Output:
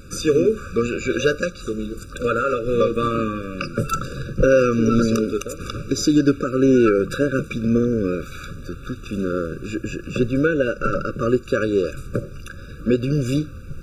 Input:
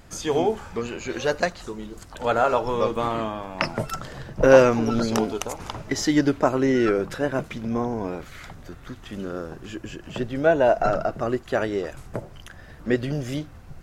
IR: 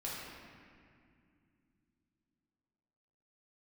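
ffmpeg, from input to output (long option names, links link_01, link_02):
-af "alimiter=limit=-14.5dB:level=0:latency=1:release=289,afftfilt=real='re*eq(mod(floor(b*sr/1024/570),2),0)':imag='im*eq(mod(floor(b*sr/1024/570),2),0)':win_size=1024:overlap=0.75,volume=8.5dB"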